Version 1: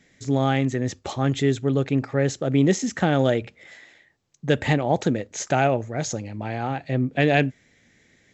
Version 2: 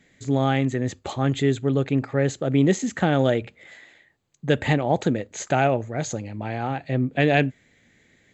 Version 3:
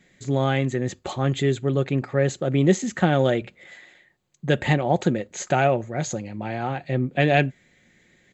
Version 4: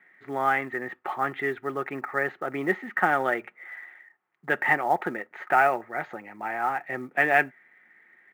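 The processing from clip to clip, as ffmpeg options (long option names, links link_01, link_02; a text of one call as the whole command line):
ffmpeg -i in.wav -af "equalizer=frequency=5500:width=5.9:gain=-12" out.wav
ffmpeg -i in.wav -af "aecho=1:1:5.5:0.35" out.wav
ffmpeg -i in.wav -af "highpass=460,equalizer=frequency=540:width_type=q:width=4:gain=-9,equalizer=frequency=840:width_type=q:width=4:gain=6,equalizer=frequency=1300:width_type=q:width=4:gain=9,equalizer=frequency=1900:width_type=q:width=4:gain=8,lowpass=frequency=2200:width=0.5412,lowpass=frequency=2200:width=1.3066,acrusher=bits=8:mode=log:mix=0:aa=0.000001,volume=-1dB" out.wav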